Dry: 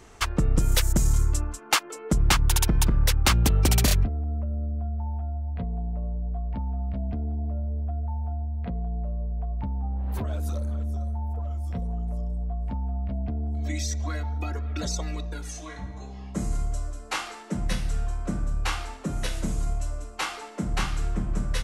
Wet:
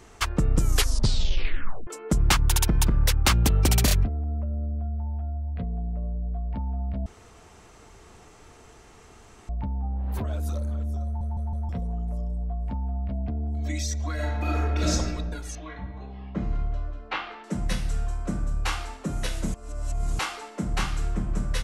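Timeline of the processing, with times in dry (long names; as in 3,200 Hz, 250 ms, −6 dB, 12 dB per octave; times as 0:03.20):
0:00.59: tape stop 1.28 s
0:04.77–0:06.50: parametric band 900 Hz −7.5 dB 0.41 octaves
0:07.06–0:09.49: fill with room tone
0:11.05: stutter in place 0.16 s, 4 plays
0:14.14–0:14.91: thrown reverb, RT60 1.3 s, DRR −6 dB
0:15.55–0:17.44: low-pass filter 3,500 Hz 24 dB per octave
0:19.54–0:20.19: reverse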